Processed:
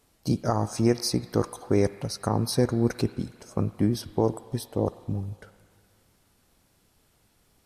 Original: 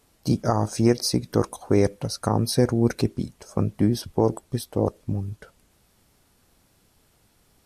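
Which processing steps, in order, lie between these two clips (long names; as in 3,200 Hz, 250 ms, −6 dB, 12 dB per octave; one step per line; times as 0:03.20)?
on a send: tilt shelving filter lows −8.5 dB, about 680 Hz + convolution reverb RT60 2.3 s, pre-delay 45 ms, DRR 12 dB
on the sum: level −3 dB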